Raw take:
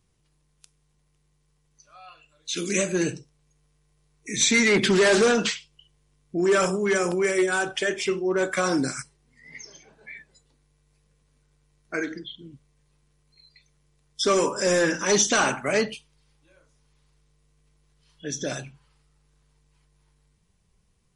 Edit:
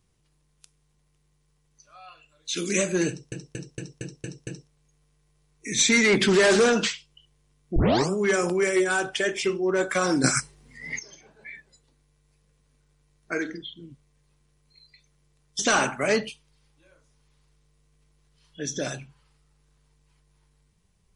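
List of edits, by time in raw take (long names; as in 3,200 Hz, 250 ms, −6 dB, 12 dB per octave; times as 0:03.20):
0:03.09: stutter 0.23 s, 7 plays
0:06.38: tape start 0.34 s
0:08.86–0:09.61: clip gain +10 dB
0:14.21–0:15.24: remove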